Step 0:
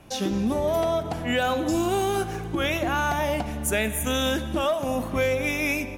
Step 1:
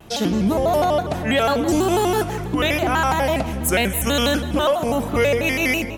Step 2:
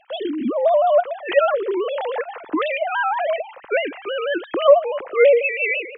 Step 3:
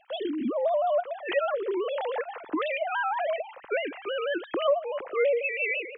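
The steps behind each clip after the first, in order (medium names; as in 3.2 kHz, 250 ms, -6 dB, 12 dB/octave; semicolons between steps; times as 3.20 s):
vibrato with a chosen wave square 6.1 Hz, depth 160 cents; trim +5.5 dB
formants replaced by sine waves
compression 2:1, threshold -21 dBFS, peak gain reduction 8 dB; trim -5 dB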